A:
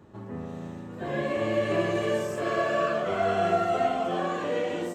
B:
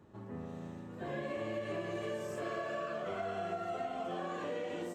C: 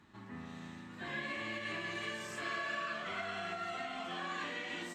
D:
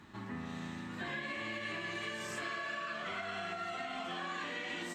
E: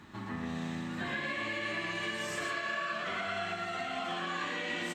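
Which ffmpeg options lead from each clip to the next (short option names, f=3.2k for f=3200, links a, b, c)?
-af "acompressor=threshold=-28dB:ratio=6,volume=-7dB"
-af "equalizer=f=125:t=o:w=1:g=-4,equalizer=f=250:t=o:w=1:g=4,equalizer=f=500:t=o:w=1:g=-11,equalizer=f=1k:t=o:w=1:g=4,equalizer=f=2k:t=o:w=1:g=10,equalizer=f=4k:t=o:w=1:g=10,equalizer=f=8k:t=o:w=1:g=5,volume=-3dB"
-af "acompressor=threshold=-45dB:ratio=4,volume=7dB"
-af "aecho=1:1:121:0.596,volume=3dB"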